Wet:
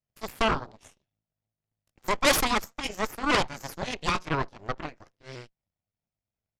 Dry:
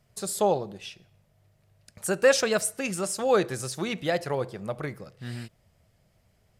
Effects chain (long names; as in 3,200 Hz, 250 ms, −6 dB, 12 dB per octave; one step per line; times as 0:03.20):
pitch shifter swept by a sawtooth +2 semitones, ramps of 255 ms
downsampling to 16,000 Hz
harmonic generator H 3 −10 dB, 8 −10 dB, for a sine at −9.5 dBFS